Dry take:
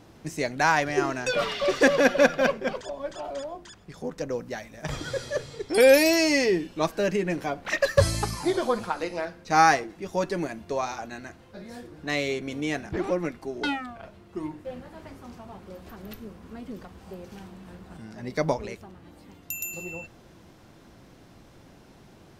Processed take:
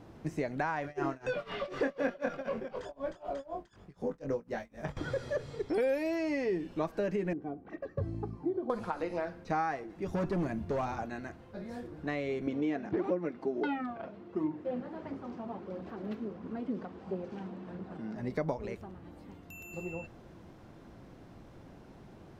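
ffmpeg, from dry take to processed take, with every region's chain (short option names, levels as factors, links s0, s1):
-filter_complex "[0:a]asettb=1/sr,asplit=3[s0][s1][s2];[s0]atrim=end=0.824[s3];[s1]atrim=start=0.82:end=4.97,asetpts=PTS-STARTPTS,afade=t=in:d=0.004:c=qsin,afade=t=out:st=4.146:d=0.004:c=qsin,asplit=2[s4][s5];[s5]adelay=22,volume=0.562[s6];[s4][s6]amix=inputs=2:normalize=0,atrim=end_sample=183015,tremolo=f=4:d=0.95[s7];[s2]atrim=start=4.966[s8];[s3][s7]acrossfade=d=0.004:c1=hsin:c2=qsin[s9];[s9][s8]acrossfade=d=0.004:c1=qsin:c2=hsin,asettb=1/sr,asplit=3[s10][s11][s12];[s10]atrim=end=7.334[s13];[s11]atrim=start=7.33:end=8.7,asetpts=PTS-STARTPTS,afade=t=in:d=0.004:c=qsin,afade=t=out:st=1.366:d=0.004:c=qsin,bandpass=f=210:t=q:w=1.7,aecho=1:1:2.6:0.58,atrim=end_sample=60417[s14];[s12]atrim=start=8.696[s15];[s13][s14]acrossfade=d=0.004:c1=hsin:c2=qsin[s16];[s16][s15]acrossfade=d=0.004:c1=qsin:c2=hsin,asettb=1/sr,asplit=3[s17][s18][s19];[s17]atrim=end=10.074[s20];[s18]atrim=start=10.07:end=11.03,asetpts=PTS-STARTPTS,afade=t=in:d=0.004:c=qsin,afade=t=out:st=0.956:d=0.004:c=qsin,bass=f=250:g=9,treble=f=4000:g=1,asoftclip=type=hard:threshold=0.0531[s21];[s19]atrim=start=11.026[s22];[s20][s21]acrossfade=d=0.004:c1=hsin:c2=qsin[s23];[s23][s22]acrossfade=d=0.004:c1=qsin:c2=hsin,asettb=1/sr,asplit=3[s24][s25][s26];[s24]atrim=end=12.474[s27];[s25]atrim=start=12.47:end=18.16,asetpts=PTS-STARTPTS,afade=t=in:d=0.004:c=qsin,afade=t=out:st=5.686:d=0.004:c=qsin,lowshelf=f=340:g=11,aphaser=in_gain=1:out_gain=1:delay=4.9:decay=0.31:speed=1.5:type=triangular,highpass=260,lowpass=5300[s28];[s26]atrim=start=18.156[s29];[s27][s28]acrossfade=d=0.004:c1=hsin:c2=qsin[s30];[s30][s29]acrossfade=d=0.004:c1=qsin:c2=hsin,acompressor=threshold=0.0355:ratio=4,highshelf=f=2400:g=-11.5,acrossover=split=3000[s31][s32];[s32]acompressor=threshold=0.00178:ratio=4:attack=1:release=60[s33];[s31][s33]amix=inputs=2:normalize=0"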